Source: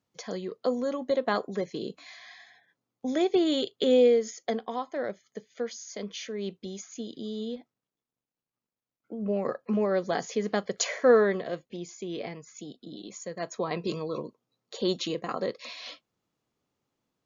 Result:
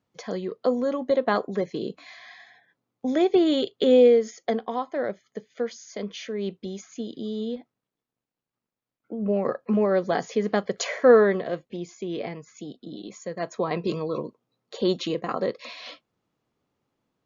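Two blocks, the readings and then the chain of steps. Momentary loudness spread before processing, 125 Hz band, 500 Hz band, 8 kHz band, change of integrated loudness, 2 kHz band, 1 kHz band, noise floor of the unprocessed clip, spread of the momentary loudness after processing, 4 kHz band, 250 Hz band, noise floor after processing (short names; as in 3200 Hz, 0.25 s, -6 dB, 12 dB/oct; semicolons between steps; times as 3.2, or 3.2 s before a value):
20 LU, +4.5 dB, +4.5 dB, n/a, +4.5 dB, +3.0 dB, +4.0 dB, under -85 dBFS, 21 LU, +0.5 dB, +4.5 dB, under -85 dBFS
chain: LPF 2900 Hz 6 dB/oct; gain +4.5 dB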